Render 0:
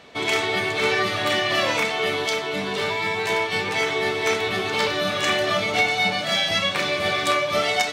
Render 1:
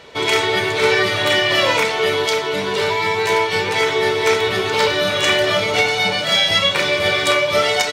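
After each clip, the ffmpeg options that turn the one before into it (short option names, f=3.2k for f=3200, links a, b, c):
-af "aecho=1:1:2.1:0.44,volume=5dB"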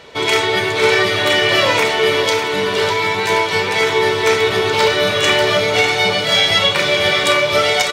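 -af "aecho=1:1:599|1198|1797|2396|2995|3594:0.355|0.181|0.0923|0.0471|0.024|0.0122,volume=1.5dB"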